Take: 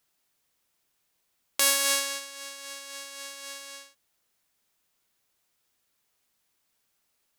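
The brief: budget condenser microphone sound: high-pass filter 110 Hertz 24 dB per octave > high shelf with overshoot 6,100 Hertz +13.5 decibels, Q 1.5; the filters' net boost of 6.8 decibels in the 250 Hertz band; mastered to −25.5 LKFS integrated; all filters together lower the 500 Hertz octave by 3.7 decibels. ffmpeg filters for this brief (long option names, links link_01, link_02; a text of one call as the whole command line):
ffmpeg -i in.wav -af "highpass=frequency=110:width=0.5412,highpass=frequency=110:width=1.3066,equalizer=frequency=250:width_type=o:gain=9,equalizer=frequency=500:width_type=o:gain=-5.5,highshelf=frequency=6100:width_type=q:width=1.5:gain=13.5,volume=-9.5dB" out.wav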